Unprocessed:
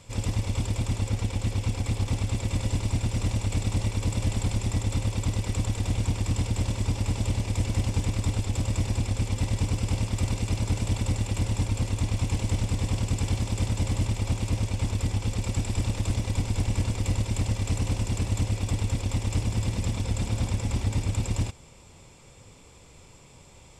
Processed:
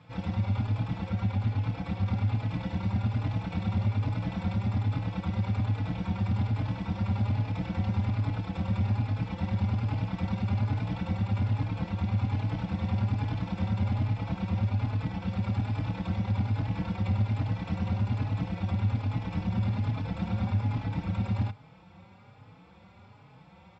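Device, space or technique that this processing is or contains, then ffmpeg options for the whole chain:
barber-pole flanger into a guitar amplifier: -filter_complex "[0:a]asplit=2[a][b];[b]adelay=4.2,afreqshift=1.2[c];[a][c]amix=inputs=2:normalize=1,asoftclip=type=tanh:threshold=-20dB,highpass=98,equalizer=f=100:t=q:w=4:g=7,equalizer=f=190:t=q:w=4:g=10,equalizer=f=400:t=q:w=4:g=-6,equalizer=f=800:t=q:w=4:g=7,equalizer=f=1.4k:t=q:w=4:g=8,equalizer=f=3k:t=q:w=4:g=-5,lowpass=f=3.7k:w=0.5412,lowpass=f=3.7k:w=1.3066"

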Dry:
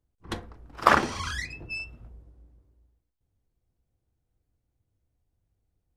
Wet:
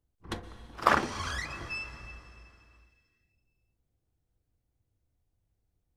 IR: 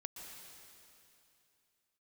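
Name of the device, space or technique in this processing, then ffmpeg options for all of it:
ducked reverb: -filter_complex "[0:a]asplit=3[a][b][c];[1:a]atrim=start_sample=2205[d];[b][d]afir=irnorm=-1:irlink=0[e];[c]apad=whole_len=263266[f];[e][f]sidechaincompress=threshold=-31dB:ratio=8:attack=9.7:release=273,volume=-2dB[g];[a][g]amix=inputs=2:normalize=0,volume=-5dB"

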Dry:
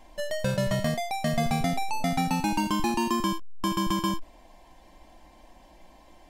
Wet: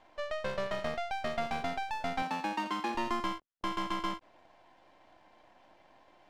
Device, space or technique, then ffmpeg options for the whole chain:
crystal radio: -filter_complex "[0:a]highpass=360,lowpass=3.3k,aeval=exprs='if(lt(val(0),0),0.251*val(0),val(0))':c=same,asettb=1/sr,asplit=3[a][b][c];[a]atrim=end=2.224[d];[b]atrim=start=2.22:end=2.95,asetpts=PTS-STARTPTS,afade=t=in:d=0.004:c=qsin,afade=t=out:st=0.726:d=0.004:c=qsin,highpass=f=160:w=0.5412,highpass=f=160:w=1.3066[e];[c]atrim=start=2.946[f];[d][e]acrossfade=d=0.004:c1=hsin:c2=qsin[g];[g][f]acrossfade=d=0.004:c1=qsin:c2=hsin,volume=-1dB"

